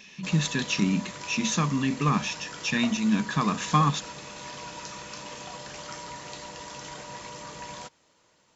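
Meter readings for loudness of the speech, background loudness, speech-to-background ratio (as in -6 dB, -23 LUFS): -26.5 LUFS, -39.5 LUFS, 13.0 dB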